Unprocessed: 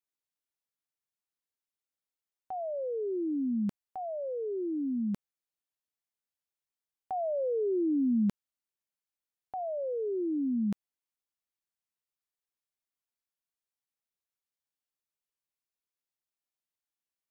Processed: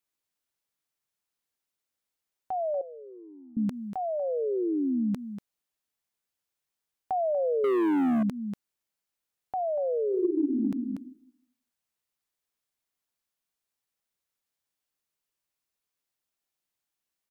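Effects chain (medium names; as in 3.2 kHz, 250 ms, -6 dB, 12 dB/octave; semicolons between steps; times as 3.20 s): 10.09–10.55 s: reverb throw, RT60 0.8 s, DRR -8 dB; delay 239 ms -13 dB; 7.64–8.23 s: waveshaping leveller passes 3; compression, threshold -30 dBFS, peak gain reduction 13 dB; 2.81–3.57 s: band-pass filter 940 Hz, Q 4.2; trim +6 dB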